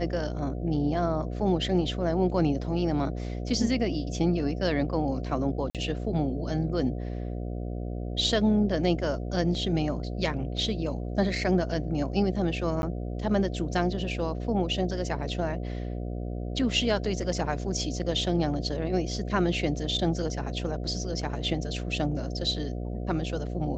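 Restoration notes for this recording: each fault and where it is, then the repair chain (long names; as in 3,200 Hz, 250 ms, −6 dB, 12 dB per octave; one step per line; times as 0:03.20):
mains buzz 60 Hz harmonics 12 −33 dBFS
0:05.70–0:05.75: drop-out 47 ms
0:12.82–0:12.83: drop-out 11 ms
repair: hum removal 60 Hz, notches 12
repair the gap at 0:05.70, 47 ms
repair the gap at 0:12.82, 11 ms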